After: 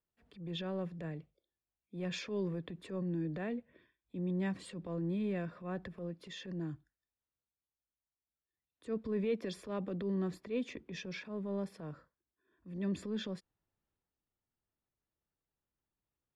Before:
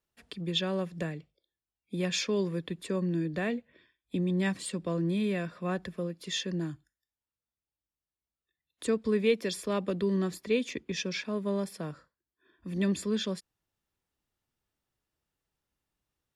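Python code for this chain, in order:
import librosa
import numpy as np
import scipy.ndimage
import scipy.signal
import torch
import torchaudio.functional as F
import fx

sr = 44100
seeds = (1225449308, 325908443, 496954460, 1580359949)

y = fx.lowpass(x, sr, hz=1300.0, slope=6)
y = fx.transient(y, sr, attack_db=-8, sustain_db=5)
y = y * 10.0 ** (-5.5 / 20.0)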